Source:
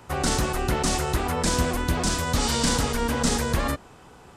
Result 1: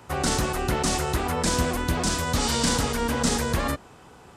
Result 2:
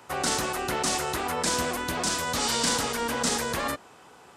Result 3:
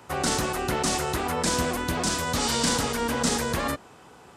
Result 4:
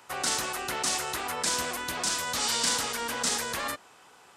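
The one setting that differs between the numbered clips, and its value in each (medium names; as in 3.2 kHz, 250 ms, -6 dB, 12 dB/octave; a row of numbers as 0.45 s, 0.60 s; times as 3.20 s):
high-pass, cutoff frequency: 42 Hz, 440 Hz, 170 Hz, 1.3 kHz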